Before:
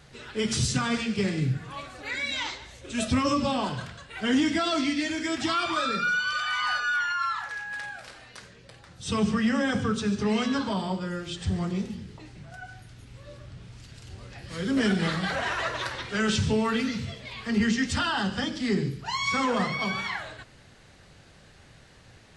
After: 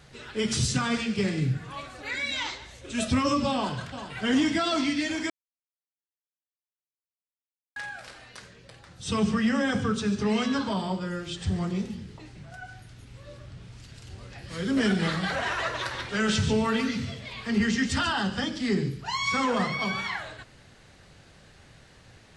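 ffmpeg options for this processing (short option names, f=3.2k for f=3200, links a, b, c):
-filter_complex "[0:a]asplit=2[a][b];[b]afade=t=in:st=3.53:d=0.01,afade=t=out:st=4.12:d=0.01,aecho=0:1:390|780|1170|1560|1950|2340|2730|3120|3510|3900:0.298538|0.208977|0.146284|0.102399|0.071679|0.0501753|0.0351227|0.0245859|0.0172101|0.0120471[c];[a][c]amix=inputs=2:normalize=0,asplit=3[d][e][f];[d]afade=t=out:st=15.9:d=0.02[g];[e]aecho=1:1:140:0.316,afade=t=in:st=15.9:d=0.02,afade=t=out:st=18.12:d=0.02[h];[f]afade=t=in:st=18.12:d=0.02[i];[g][h][i]amix=inputs=3:normalize=0,asplit=3[j][k][l];[j]atrim=end=5.3,asetpts=PTS-STARTPTS,afade=t=out:st=5.296:d=0.004:c=hsin[m];[k]atrim=start=5.3:end=7.76,asetpts=PTS-STARTPTS,volume=0[n];[l]atrim=start=7.76,asetpts=PTS-STARTPTS,afade=t=in:d=0.004:c=hsin[o];[m][n][o]concat=n=3:v=0:a=1"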